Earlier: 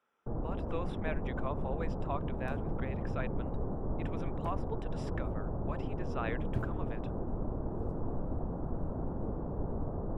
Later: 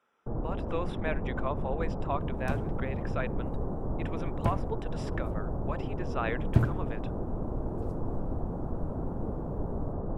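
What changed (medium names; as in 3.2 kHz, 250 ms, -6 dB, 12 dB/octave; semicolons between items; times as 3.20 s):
speech +5.0 dB; second sound +11.0 dB; reverb: on, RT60 0.60 s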